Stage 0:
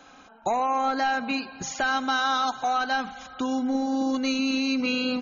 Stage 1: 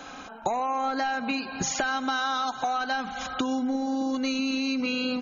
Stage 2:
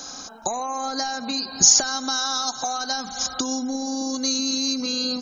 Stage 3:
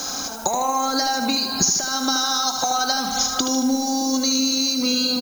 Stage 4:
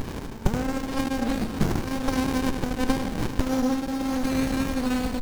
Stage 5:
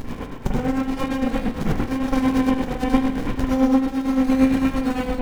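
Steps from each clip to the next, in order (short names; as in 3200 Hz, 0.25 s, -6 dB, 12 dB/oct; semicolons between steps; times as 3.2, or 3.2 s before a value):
compressor 10:1, threshold -34 dBFS, peak gain reduction 13 dB; gain +9 dB
resonant high shelf 3700 Hz +12 dB, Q 3
compressor, threshold -27 dBFS, peak gain reduction 16 dB; feedback echo 76 ms, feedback 46%, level -7.5 dB; added noise blue -50 dBFS; gain +8.5 dB
running maximum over 65 samples
reverb, pre-delay 41 ms, DRR -6 dB; tremolo 8.8 Hz, depth 58%; gain -2 dB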